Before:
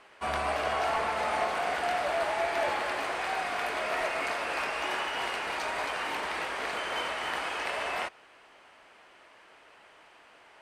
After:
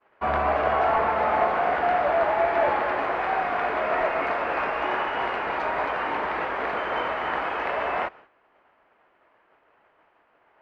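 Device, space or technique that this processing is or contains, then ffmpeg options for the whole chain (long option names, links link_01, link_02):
hearing-loss simulation: -af "lowpass=1600,agate=range=-33dB:threshold=-49dB:ratio=3:detection=peak,volume=8dB"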